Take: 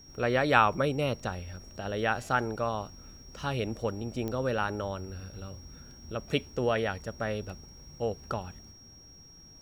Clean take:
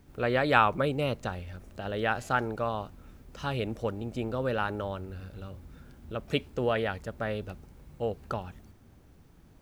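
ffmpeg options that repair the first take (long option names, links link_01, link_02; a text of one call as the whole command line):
ffmpeg -i in.wav -af "adeclick=threshold=4,bandreject=frequency=5600:width=30" out.wav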